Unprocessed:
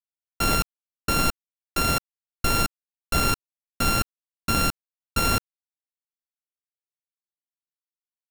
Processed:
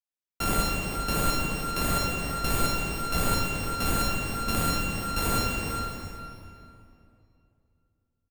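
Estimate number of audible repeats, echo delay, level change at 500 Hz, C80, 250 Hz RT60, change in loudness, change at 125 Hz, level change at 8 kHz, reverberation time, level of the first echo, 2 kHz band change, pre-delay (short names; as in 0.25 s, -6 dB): 1, 0.407 s, 0.0 dB, -0.5 dB, 3.0 s, -2.5 dB, -0.5 dB, -2.0 dB, 2.7 s, -9.0 dB, -2.5 dB, 35 ms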